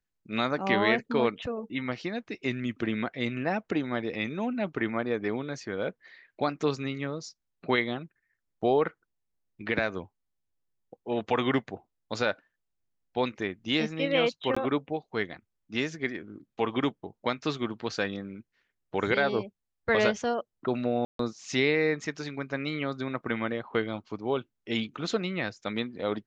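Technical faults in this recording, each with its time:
14.55–14.56 s: dropout 15 ms
21.05–21.19 s: dropout 143 ms

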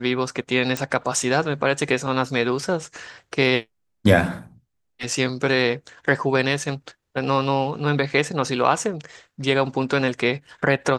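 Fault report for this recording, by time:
0.77 s: pop

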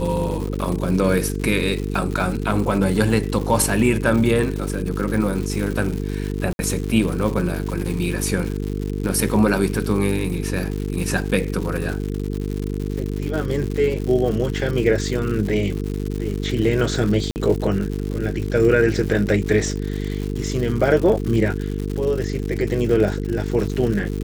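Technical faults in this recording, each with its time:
buzz 50 Hz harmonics 9 -25 dBFS
crackle 190 per s -26 dBFS
6.53–6.59 s: dropout 61 ms
17.31–17.36 s: dropout 49 ms

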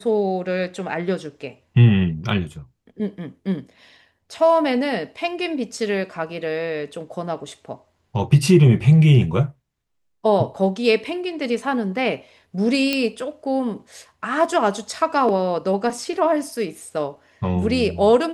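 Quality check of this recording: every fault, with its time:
12.93 s: pop -7 dBFS

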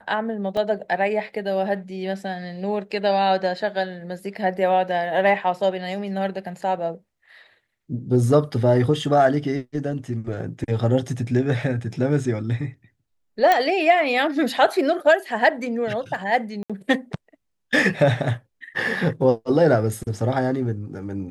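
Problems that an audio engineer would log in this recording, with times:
0.57 s: dropout 2.6 ms
13.52 s: pop -6 dBFS
16.63–16.70 s: dropout 66 ms

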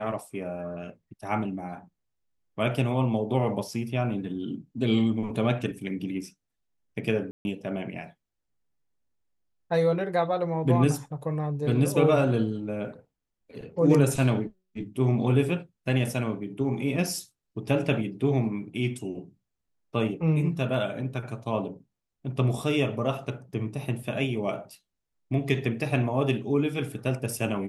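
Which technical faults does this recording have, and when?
7.31–7.45 s: dropout 140 ms

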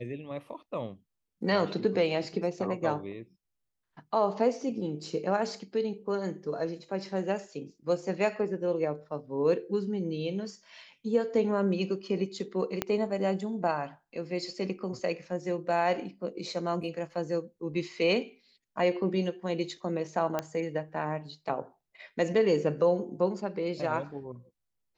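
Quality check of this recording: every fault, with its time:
12.82 s: pop -12 dBFS
20.39 s: pop -16 dBFS

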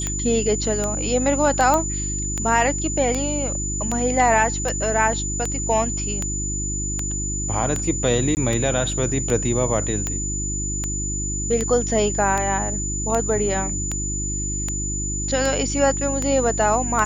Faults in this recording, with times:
hum 50 Hz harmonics 7 -28 dBFS
tick 78 rpm -10 dBFS
whine 7 kHz -26 dBFS
1.74 s: pop -7 dBFS
8.35–8.37 s: dropout 19 ms

